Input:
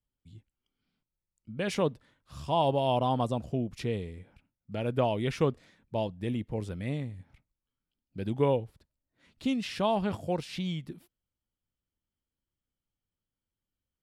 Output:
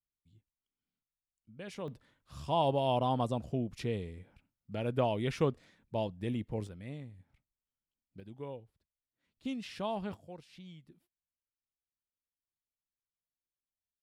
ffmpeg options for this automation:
ffmpeg -i in.wav -af "asetnsamples=nb_out_samples=441:pad=0,asendcmd='1.88 volume volume -3dB;6.67 volume volume -10.5dB;8.2 volume volume -17.5dB;9.45 volume volume -8.5dB;10.14 volume volume -17.5dB',volume=-13.5dB" out.wav

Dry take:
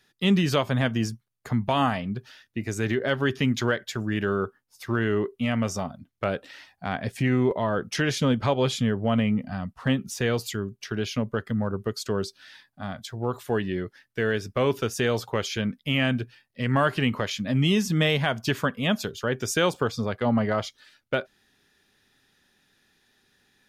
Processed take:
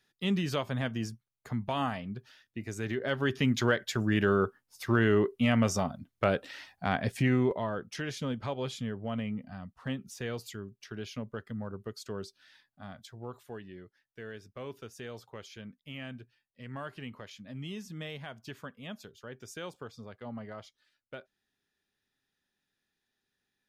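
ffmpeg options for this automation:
ffmpeg -i in.wav -af "afade=type=in:start_time=2.89:duration=1.18:silence=0.375837,afade=type=out:start_time=6.91:duration=0.95:silence=0.266073,afade=type=out:start_time=13.01:duration=0.59:silence=0.446684" out.wav

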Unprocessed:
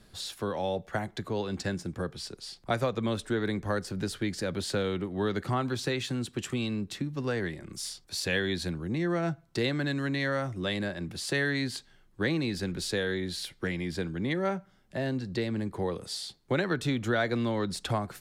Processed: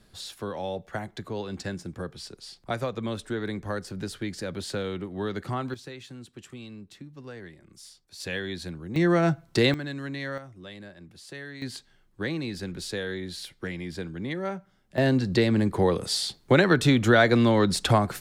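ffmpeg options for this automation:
ffmpeg -i in.wav -af "asetnsamples=nb_out_samples=441:pad=0,asendcmd='5.74 volume volume -11dB;8.2 volume volume -3.5dB;8.96 volume volume 7.5dB;9.74 volume volume -4dB;10.38 volume volume -12dB;11.62 volume volume -2dB;14.98 volume volume 9dB',volume=-1.5dB" out.wav

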